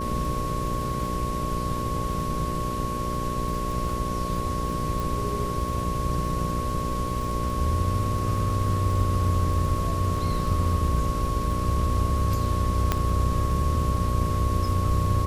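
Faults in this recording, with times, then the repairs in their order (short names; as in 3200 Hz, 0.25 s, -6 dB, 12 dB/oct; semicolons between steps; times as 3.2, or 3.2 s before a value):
buzz 60 Hz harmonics 10 -31 dBFS
crackle 20/s -31 dBFS
tone 1100 Hz -30 dBFS
5 pop
12.92 pop -8 dBFS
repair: de-click; de-hum 60 Hz, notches 10; notch 1100 Hz, Q 30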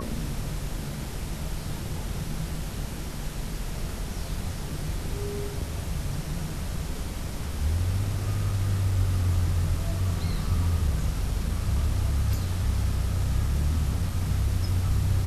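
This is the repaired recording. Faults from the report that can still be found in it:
none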